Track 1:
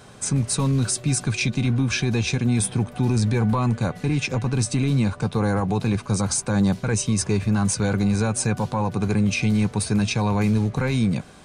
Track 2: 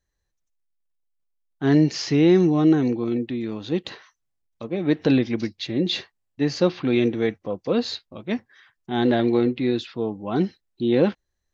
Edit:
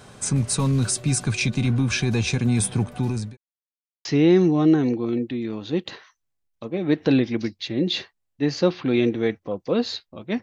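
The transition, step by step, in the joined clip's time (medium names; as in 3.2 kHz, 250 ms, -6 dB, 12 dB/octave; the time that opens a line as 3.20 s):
track 1
2.74–3.37 s: fade out equal-power
3.37–4.05 s: mute
4.05 s: go over to track 2 from 2.04 s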